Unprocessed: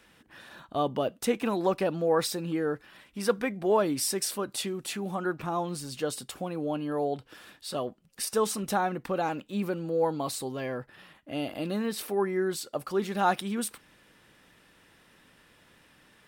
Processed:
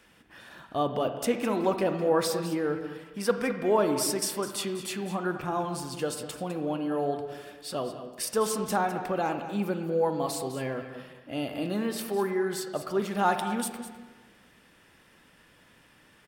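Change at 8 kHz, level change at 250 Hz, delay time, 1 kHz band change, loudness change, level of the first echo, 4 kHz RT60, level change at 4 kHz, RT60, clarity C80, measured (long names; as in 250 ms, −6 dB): +0.5 dB, +1.0 dB, 205 ms, +1.0 dB, +0.5 dB, −12.5 dB, 1.3 s, 0.0 dB, 1.4 s, 8.0 dB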